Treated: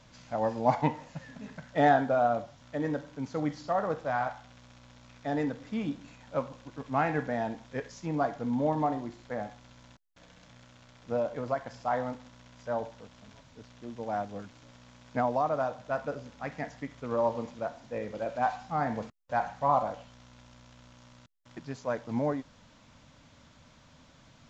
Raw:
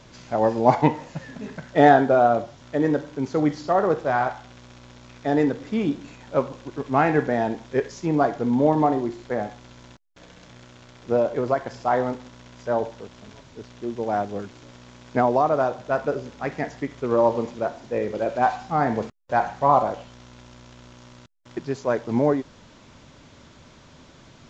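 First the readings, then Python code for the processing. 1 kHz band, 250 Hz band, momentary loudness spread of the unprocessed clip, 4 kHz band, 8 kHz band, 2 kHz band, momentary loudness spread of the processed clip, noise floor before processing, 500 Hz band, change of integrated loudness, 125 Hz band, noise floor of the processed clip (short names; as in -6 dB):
-8.0 dB, -9.5 dB, 15 LU, -7.5 dB, n/a, -7.5 dB, 16 LU, -50 dBFS, -9.5 dB, -9.0 dB, -7.5 dB, -58 dBFS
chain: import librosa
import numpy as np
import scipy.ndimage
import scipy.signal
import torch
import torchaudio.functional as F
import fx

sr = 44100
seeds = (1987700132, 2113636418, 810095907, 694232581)

y = fx.peak_eq(x, sr, hz=380.0, db=-14.5, octaves=0.29)
y = y * 10.0 ** (-7.5 / 20.0)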